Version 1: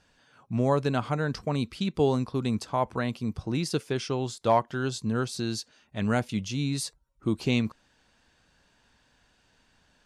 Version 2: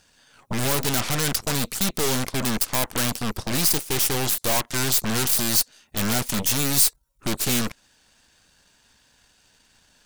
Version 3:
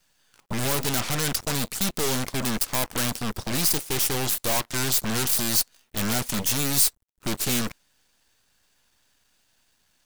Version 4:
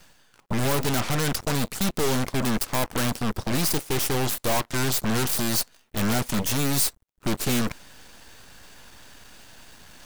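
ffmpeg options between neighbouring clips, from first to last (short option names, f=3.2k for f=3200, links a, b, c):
-af "volume=25.5dB,asoftclip=hard,volume=-25.5dB,aeval=exprs='0.0562*(cos(1*acos(clip(val(0)/0.0562,-1,1)))-cos(1*PI/2))+0.0141*(cos(7*acos(clip(val(0)/0.0562,-1,1)))-cos(7*PI/2))+0.0178*(cos(8*acos(clip(val(0)/0.0562,-1,1)))-cos(8*PI/2))':c=same,crystalizer=i=3:c=0,volume=3.5dB"
-af "acrusher=bits=8:dc=4:mix=0:aa=0.000001,volume=-2dB"
-af "highshelf=f=2.4k:g=-7.5,areverse,acompressor=mode=upward:threshold=-33dB:ratio=2.5,areverse,volume=3.5dB"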